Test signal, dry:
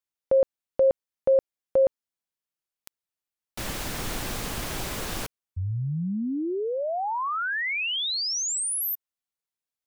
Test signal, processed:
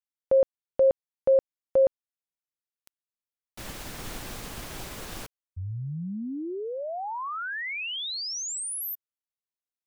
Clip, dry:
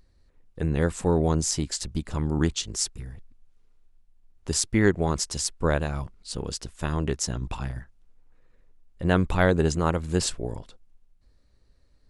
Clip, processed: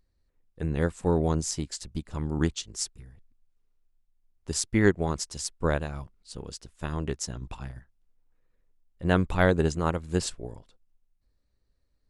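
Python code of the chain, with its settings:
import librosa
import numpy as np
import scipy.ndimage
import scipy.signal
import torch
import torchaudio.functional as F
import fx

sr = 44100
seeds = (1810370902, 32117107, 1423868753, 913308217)

y = fx.upward_expand(x, sr, threshold_db=-39.0, expansion=1.5)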